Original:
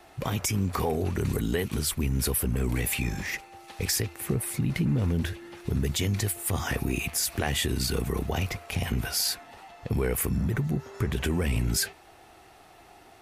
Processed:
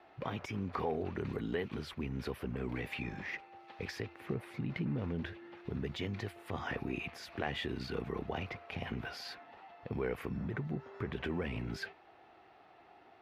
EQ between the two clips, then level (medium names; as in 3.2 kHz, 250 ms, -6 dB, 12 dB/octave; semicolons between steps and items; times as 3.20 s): high-pass 280 Hz 6 dB/octave; distance through air 320 m; -4.5 dB